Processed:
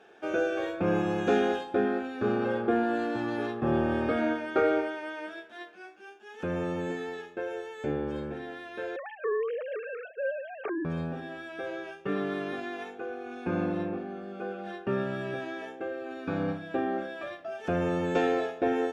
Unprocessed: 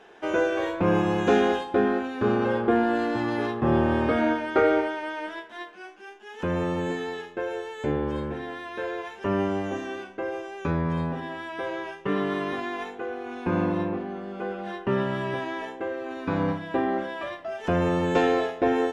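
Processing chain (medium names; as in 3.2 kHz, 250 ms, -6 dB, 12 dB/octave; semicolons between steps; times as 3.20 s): 8.96–10.85 s: formants replaced by sine waves; comb of notches 1 kHz; trim -4 dB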